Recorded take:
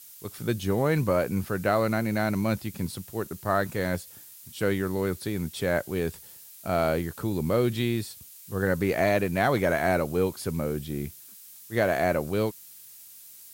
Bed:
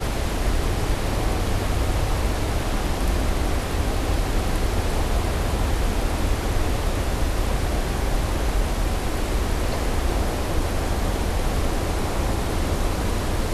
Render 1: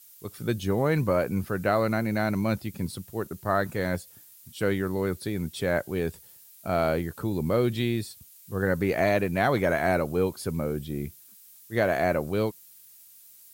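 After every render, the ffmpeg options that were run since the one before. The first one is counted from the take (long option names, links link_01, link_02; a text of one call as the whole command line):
ffmpeg -i in.wav -af "afftdn=noise_reduction=6:noise_floor=-48" out.wav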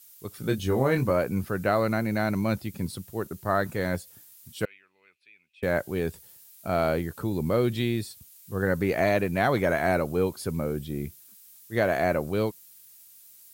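ffmpeg -i in.wav -filter_complex "[0:a]asettb=1/sr,asplit=3[link_01][link_02][link_03];[link_01]atrim=end=0.414[link_04];[link_02]atrim=start=0.41:end=1.11,asetpts=PTS-STARTPTS,afade=type=in:duration=0.004:curve=qsin,afade=type=out:start_time=0.696:duration=0.004:curve=qsin,asplit=2[link_05][link_06];[link_06]adelay=23,volume=-5.5dB[link_07];[link_05][link_07]amix=inputs=2:normalize=0,atrim=end_sample=30870[link_08];[link_03]atrim=start=1.106[link_09];[link_04][link_08]acrossfade=duration=0.004:curve1=hsin:curve2=qsin[link_10];[link_10][link_09]acrossfade=duration=0.004:curve1=qsin:curve2=hsin,asettb=1/sr,asplit=3[link_11][link_12][link_13];[link_11]atrim=end=4.654[link_14];[link_12]atrim=start=4.65:end=5.63,asetpts=PTS-STARTPTS,afade=type=in:duration=0.004:curve=qsin,afade=type=out:start_time=0.976:duration=0.004:curve=qsin,bandpass=frequency=2500:width_type=q:width=17[link_15];[link_13]atrim=start=5.626[link_16];[link_14][link_15]acrossfade=duration=0.004:curve1=hsin:curve2=qsin[link_17];[link_17][link_16]acrossfade=duration=0.004:curve1=qsin:curve2=hsin" out.wav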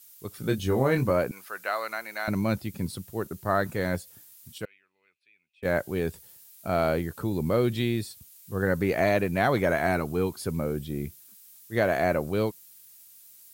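ffmpeg -i in.wav -filter_complex "[0:a]asettb=1/sr,asplit=3[link_01][link_02][link_03];[link_01]atrim=end=1.314[link_04];[link_02]atrim=start=1.31:end=2.28,asetpts=PTS-STARTPTS,afade=type=in:duration=0.004:curve=qsin,afade=type=out:start_time=0.966:duration=0.004:curve=qsin,highpass=950[link_05];[link_03]atrim=start=2.276[link_06];[link_04][link_05]acrossfade=duration=0.004:curve1=hsin:curve2=qsin[link_07];[link_07][link_06]acrossfade=duration=0.004:curve1=qsin:curve2=hsin,asettb=1/sr,asplit=3[link_08][link_09][link_10];[link_08]atrim=end=9.874[link_11];[link_09]atrim=start=9.87:end=10.41,asetpts=PTS-STARTPTS,afade=type=in:duration=0.004:curve=qsin,afade=type=out:start_time=0.536:duration=0.004:curve=qsin,equalizer=frequency=550:width=5:gain=-10.5[link_12];[link_10]atrim=start=10.406[link_13];[link_11][link_12]acrossfade=duration=0.004:curve1=hsin:curve2=qsin[link_14];[link_14][link_13]acrossfade=duration=0.004:curve1=qsin:curve2=hsin,asplit=3[link_15][link_16][link_17];[link_15]atrim=end=4.582[link_18];[link_16]atrim=start=4.578:end=5.652,asetpts=PTS-STARTPTS,volume=-7dB[link_19];[link_17]atrim=start=5.648[link_20];[link_18][link_19]acrossfade=duration=0.004:curve1=hsin:curve2=hsin[link_21];[link_21][link_20]acrossfade=duration=0.004:curve1=hsin:curve2=hsin" out.wav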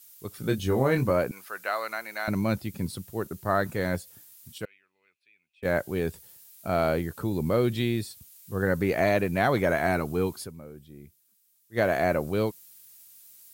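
ffmpeg -i in.wav -filter_complex "[0:a]asplit=3[link_01][link_02][link_03];[link_01]atrim=end=10.74,asetpts=PTS-STARTPTS,afade=type=out:start_time=10.43:duration=0.31:curve=exp:silence=0.177828[link_04];[link_02]atrim=start=10.74:end=11.48,asetpts=PTS-STARTPTS,volume=-15dB[link_05];[link_03]atrim=start=11.48,asetpts=PTS-STARTPTS,afade=type=in:duration=0.31:curve=exp:silence=0.177828[link_06];[link_04][link_05][link_06]concat=n=3:v=0:a=1" out.wav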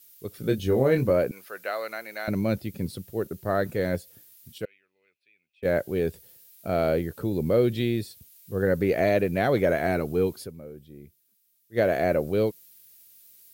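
ffmpeg -i in.wav -af "equalizer=frequency=500:width_type=o:width=1:gain=6,equalizer=frequency=1000:width_type=o:width=1:gain=-8,equalizer=frequency=8000:width_type=o:width=1:gain=-5" out.wav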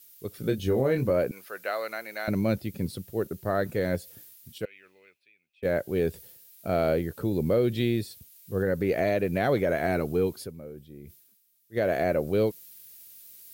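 ffmpeg -i in.wav -af "alimiter=limit=-15dB:level=0:latency=1:release=183,areverse,acompressor=mode=upward:threshold=-42dB:ratio=2.5,areverse" out.wav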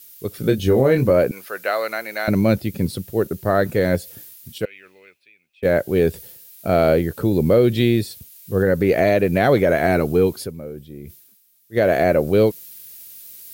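ffmpeg -i in.wav -af "volume=9dB" out.wav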